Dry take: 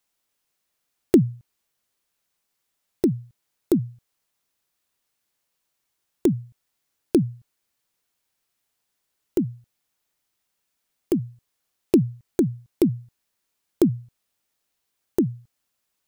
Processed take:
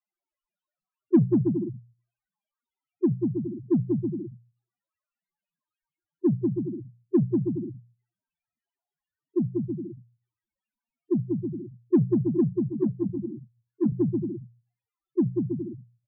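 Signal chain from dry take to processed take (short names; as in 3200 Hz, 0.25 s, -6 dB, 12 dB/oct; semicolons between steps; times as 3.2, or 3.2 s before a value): Bessel low-pass 3800 Hz; bell 470 Hz -4 dB 0.26 oct; doubler 48 ms -13 dB; on a send: bouncing-ball echo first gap 0.19 s, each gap 0.7×, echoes 5; on the sum: loudest bins only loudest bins 2; notches 60/120/180 Hz; in parallel at -7 dB: soft clip -21.5 dBFS, distortion -12 dB; 12.68–13.92 on the sum: ensemble effect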